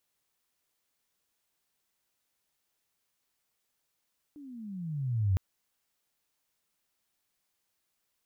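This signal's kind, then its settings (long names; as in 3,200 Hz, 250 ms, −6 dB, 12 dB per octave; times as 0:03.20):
pitch glide with a swell sine, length 1.01 s, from 302 Hz, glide −21 semitones, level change +23 dB, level −22 dB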